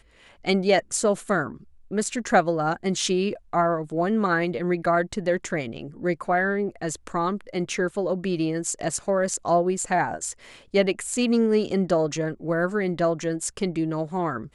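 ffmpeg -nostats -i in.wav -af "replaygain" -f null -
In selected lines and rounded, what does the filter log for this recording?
track_gain = +5.0 dB
track_peak = 0.305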